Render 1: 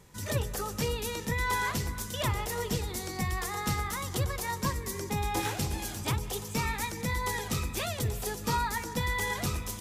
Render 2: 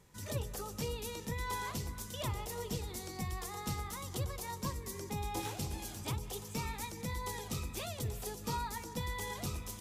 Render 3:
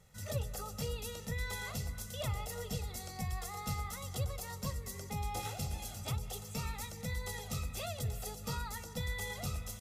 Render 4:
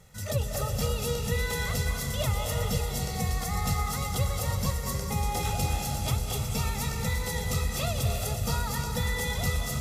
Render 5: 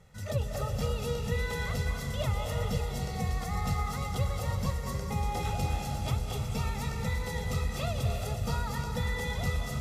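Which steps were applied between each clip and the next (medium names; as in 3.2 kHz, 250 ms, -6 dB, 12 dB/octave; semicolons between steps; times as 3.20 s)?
dynamic bell 1.7 kHz, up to -7 dB, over -49 dBFS, Q 1.8; trim -7 dB
comb 1.5 ms, depth 70%; trim -2 dB
reverberation RT60 2.3 s, pre-delay 195 ms, DRR 2 dB; trim +8 dB
treble shelf 5.2 kHz -11.5 dB; trim -2 dB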